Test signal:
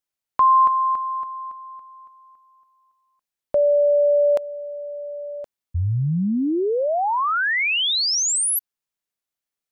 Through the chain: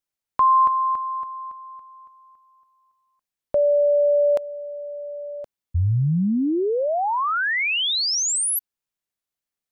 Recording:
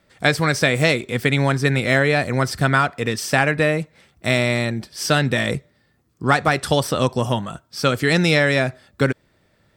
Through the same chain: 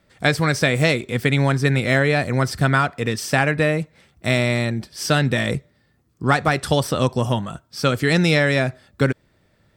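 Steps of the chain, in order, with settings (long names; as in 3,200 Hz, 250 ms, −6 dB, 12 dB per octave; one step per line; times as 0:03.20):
low-shelf EQ 220 Hz +4 dB
level −1.5 dB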